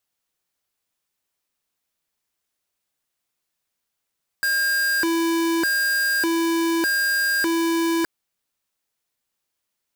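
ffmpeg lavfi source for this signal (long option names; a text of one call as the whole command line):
ffmpeg -f lavfi -i "aevalsrc='0.0891*(2*lt(mod((971*t+639/0.83*(0.5-abs(mod(0.83*t,1)-0.5))),1),0.5)-1)':duration=3.62:sample_rate=44100" out.wav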